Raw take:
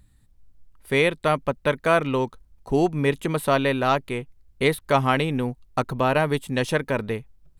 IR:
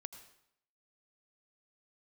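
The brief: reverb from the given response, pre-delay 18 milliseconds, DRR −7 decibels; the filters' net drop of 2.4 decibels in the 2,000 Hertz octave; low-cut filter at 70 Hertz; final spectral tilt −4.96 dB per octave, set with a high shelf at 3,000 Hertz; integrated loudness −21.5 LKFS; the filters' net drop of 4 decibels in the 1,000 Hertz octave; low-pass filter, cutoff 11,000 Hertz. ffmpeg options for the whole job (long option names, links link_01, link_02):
-filter_complex "[0:a]highpass=70,lowpass=11000,equalizer=frequency=1000:width_type=o:gain=-5.5,equalizer=frequency=2000:width_type=o:gain=-4.5,highshelf=frequency=3000:gain=8,asplit=2[link_01][link_02];[1:a]atrim=start_sample=2205,adelay=18[link_03];[link_02][link_03]afir=irnorm=-1:irlink=0,volume=11dB[link_04];[link_01][link_04]amix=inputs=2:normalize=0,volume=-4dB"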